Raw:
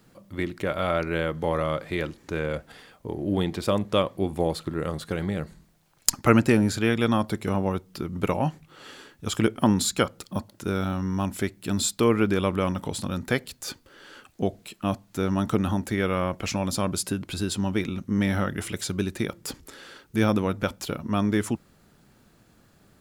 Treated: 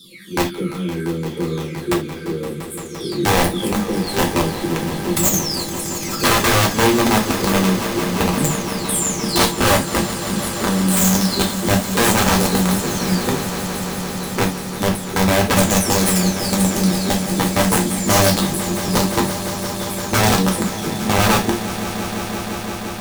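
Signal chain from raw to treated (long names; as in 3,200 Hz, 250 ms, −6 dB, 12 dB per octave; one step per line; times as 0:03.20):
every frequency bin delayed by itself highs early, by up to 919 ms
drawn EQ curve 120 Hz 0 dB, 180 Hz +13 dB, 400 Hz +12 dB, 680 Hz −24 dB, 1,200 Hz −8 dB, 2,800 Hz −3 dB, 4,200 Hz +10 dB
wrap-around overflow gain 10.5 dB
on a send: echo that builds up and dies away 172 ms, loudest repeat 5, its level −14.5 dB
on the sum: reverb whose tail is shaped and stops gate 100 ms falling, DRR −0.5 dB
level −2 dB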